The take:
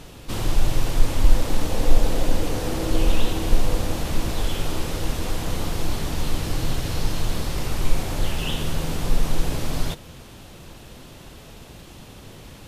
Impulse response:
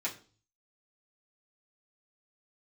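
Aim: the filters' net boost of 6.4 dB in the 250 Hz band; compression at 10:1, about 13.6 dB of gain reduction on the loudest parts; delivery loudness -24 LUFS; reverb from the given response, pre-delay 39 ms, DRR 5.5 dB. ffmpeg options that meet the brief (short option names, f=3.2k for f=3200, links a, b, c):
-filter_complex "[0:a]equalizer=f=250:t=o:g=8.5,acompressor=threshold=-20dB:ratio=10,asplit=2[a][b];[1:a]atrim=start_sample=2205,adelay=39[c];[b][c]afir=irnorm=-1:irlink=0,volume=-9.5dB[d];[a][d]amix=inputs=2:normalize=0,volume=5.5dB"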